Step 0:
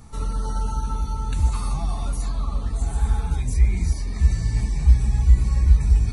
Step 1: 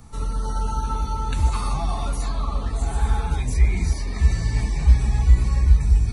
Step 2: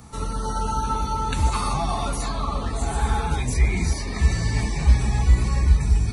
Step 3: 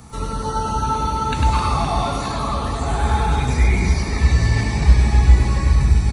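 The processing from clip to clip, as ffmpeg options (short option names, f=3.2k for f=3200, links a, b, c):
-filter_complex "[0:a]bandreject=f=200.4:t=h:w=4,bandreject=f=400.8:t=h:w=4,bandreject=f=601.2:t=h:w=4,bandreject=f=801.6:t=h:w=4,bandreject=f=1.002k:t=h:w=4,bandreject=f=1.2024k:t=h:w=4,bandreject=f=1.4028k:t=h:w=4,bandreject=f=1.6032k:t=h:w=4,bandreject=f=1.8036k:t=h:w=4,bandreject=f=2.004k:t=h:w=4,bandreject=f=2.2044k:t=h:w=4,bandreject=f=2.4048k:t=h:w=4,acrossover=split=300|4800[a][b][c];[b]dynaudnorm=f=150:g=9:m=6dB[d];[a][d][c]amix=inputs=3:normalize=0"
-af "highpass=f=110:p=1,volume=4.5dB"
-filter_complex "[0:a]aecho=1:1:100|260|516|925.6|1581:0.631|0.398|0.251|0.158|0.1,acrossover=split=5600[a][b];[b]acompressor=threshold=-46dB:ratio=4:attack=1:release=60[c];[a][c]amix=inputs=2:normalize=0,volume=3dB"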